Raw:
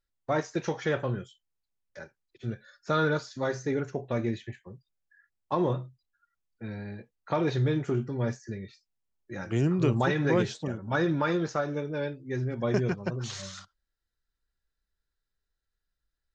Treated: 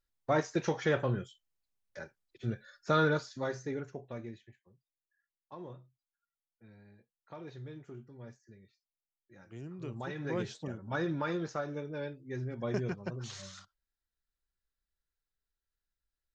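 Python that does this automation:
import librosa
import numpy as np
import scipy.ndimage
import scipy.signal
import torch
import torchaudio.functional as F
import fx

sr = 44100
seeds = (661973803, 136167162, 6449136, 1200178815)

y = fx.gain(x, sr, db=fx.line((2.98, -1.0), (4.04, -11.0), (4.6, -19.5), (9.68, -19.5), (10.58, -7.0)))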